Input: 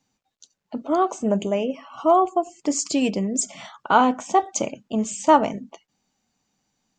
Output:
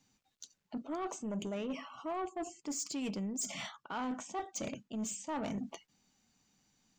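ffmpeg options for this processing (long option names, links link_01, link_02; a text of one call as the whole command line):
ffmpeg -i in.wav -af "equalizer=frequency=660:width_type=o:width=1.7:gain=-5.5,areverse,acompressor=threshold=-33dB:ratio=12,areverse,asoftclip=type=tanh:threshold=-33dB,volume=1dB" out.wav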